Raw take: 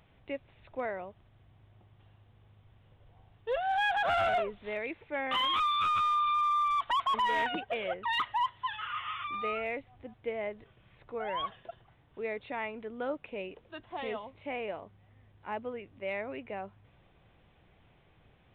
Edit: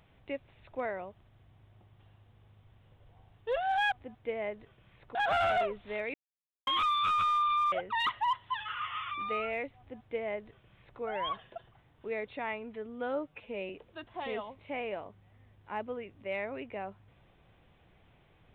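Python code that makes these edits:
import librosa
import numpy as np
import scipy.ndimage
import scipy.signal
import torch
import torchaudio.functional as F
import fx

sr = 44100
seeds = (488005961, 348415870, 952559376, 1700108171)

y = fx.edit(x, sr, fx.silence(start_s=4.91, length_s=0.53),
    fx.cut(start_s=6.49, length_s=1.36),
    fx.duplicate(start_s=9.91, length_s=1.23, to_s=3.92),
    fx.stretch_span(start_s=12.73, length_s=0.73, factor=1.5), tone=tone)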